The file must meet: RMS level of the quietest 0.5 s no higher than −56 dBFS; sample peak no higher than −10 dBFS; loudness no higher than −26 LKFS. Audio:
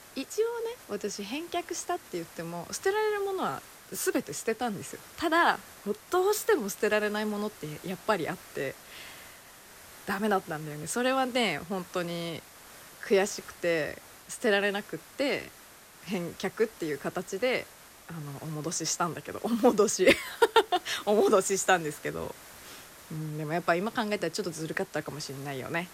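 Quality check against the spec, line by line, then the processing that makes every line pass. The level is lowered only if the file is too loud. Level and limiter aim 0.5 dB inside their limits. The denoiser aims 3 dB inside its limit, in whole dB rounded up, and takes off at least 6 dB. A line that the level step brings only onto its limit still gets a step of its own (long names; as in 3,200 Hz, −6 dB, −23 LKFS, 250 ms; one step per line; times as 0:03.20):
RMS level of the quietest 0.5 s −52 dBFS: out of spec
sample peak −9.0 dBFS: out of spec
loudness −29.5 LKFS: in spec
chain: broadband denoise 7 dB, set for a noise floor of −52 dBFS
brickwall limiter −10.5 dBFS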